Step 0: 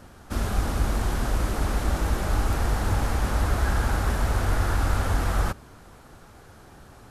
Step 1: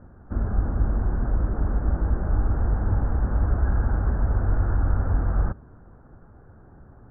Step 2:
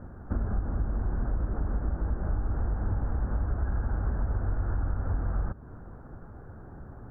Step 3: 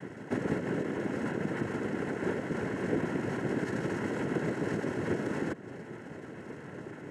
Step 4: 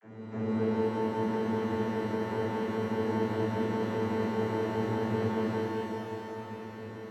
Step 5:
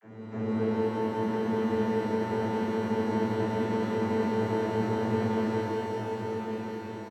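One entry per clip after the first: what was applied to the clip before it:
elliptic low-pass 1600 Hz, stop band 60 dB; low shelf 410 Hz +11.5 dB; gain -8 dB
compressor 5:1, threshold -30 dBFS, peak gain reduction 13.5 dB; gain +4 dB
noise vocoder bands 3; notch comb 1200 Hz; gain +5.5 dB
vocoder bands 32, saw 110 Hz; shimmer reverb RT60 2.8 s, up +12 st, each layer -8 dB, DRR -10 dB; gain -6 dB
echo 1.105 s -7 dB; gain +1 dB

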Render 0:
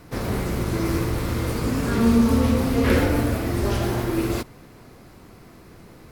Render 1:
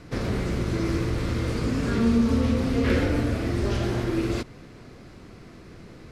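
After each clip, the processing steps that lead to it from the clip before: LPF 6500 Hz 12 dB/oct; bell 890 Hz -5.5 dB 0.85 oct; in parallel at +3 dB: compressor, threshold -27 dBFS, peak gain reduction 13 dB; on the sum: gain -6 dB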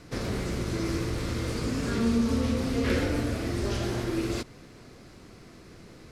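tone controls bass -2 dB, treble +6 dB; gain -3 dB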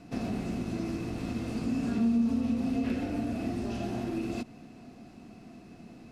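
compressor, threshold -28 dBFS, peak gain reduction 7.5 dB; small resonant body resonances 230/700/2600 Hz, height 15 dB, ringing for 30 ms; gain -8.5 dB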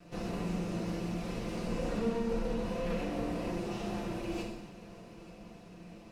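minimum comb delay 5.8 ms; multi-head echo 0.292 s, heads all three, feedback 49%, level -21.5 dB; non-linear reverb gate 0.29 s falling, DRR -2 dB; gain -4.5 dB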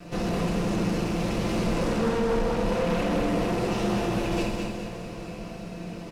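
in parallel at -12 dB: sine folder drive 13 dB, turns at -20 dBFS; on the sum: feedback echo 0.209 s, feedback 44%, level -4.5 dB; gain +3 dB

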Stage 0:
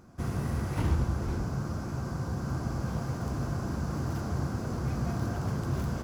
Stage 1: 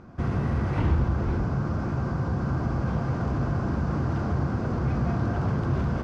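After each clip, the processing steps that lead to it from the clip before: LPF 3000 Hz 12 dB/oct; in parallel at 0 dB: limiter -28.5 dBFS, peak gain reduction 11.5 dB; on the sum: gain +1.5 dB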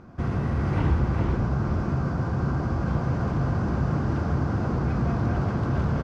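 echo 0.405 s -4.5 dB

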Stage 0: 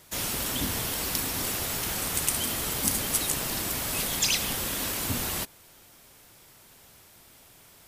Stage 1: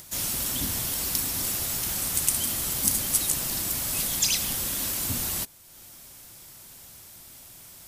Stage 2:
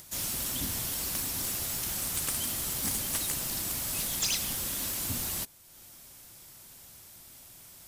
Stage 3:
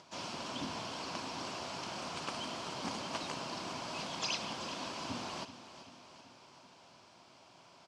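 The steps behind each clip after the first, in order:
tone controls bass +4 dB, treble +8 dB; notch 440 Hz, Q 12; upward compressor, threshold -35 dBFS; gain -4.5 dB
slew limiter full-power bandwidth 590 Hz; gain -4 dB
speaker cabinet 200–4600 Hz, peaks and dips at 670 Hz +5 dB, 1000 Hz +8 dB, 1900 Hz -8 dB, 3700 Hz -7 dB; feedback echo 0.384 s, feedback 56%, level -13 dB

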